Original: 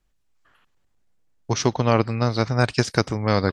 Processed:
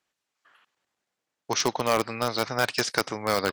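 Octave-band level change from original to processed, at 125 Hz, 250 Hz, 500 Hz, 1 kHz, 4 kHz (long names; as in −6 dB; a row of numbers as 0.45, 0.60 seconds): −16.5, −9.0, −4.0, −1.5, +0.5 decibels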